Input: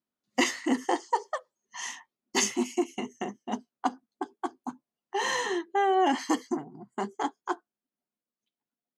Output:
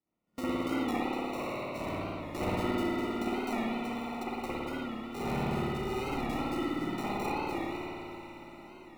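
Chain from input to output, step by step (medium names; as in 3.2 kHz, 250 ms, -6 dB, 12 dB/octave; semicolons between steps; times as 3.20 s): spectral sustain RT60 0.61 s; 4.23–6.13 s: peaking EQ 570 Hz -15 dB 1.3 oct; compression 5:1, threshold -38 dBFS, peak gain reduction 18.5 dB; rotary cabinet horn 1.1 Hz; sample-and-hold 27×; echo that smears into a reverb 542 ms, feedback 64%, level -13.5 dB; spring tank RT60 2.5 s, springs 55 ms, chirp 75 ms, DRR -10 dB; warped record 45 rpm, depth 100 cents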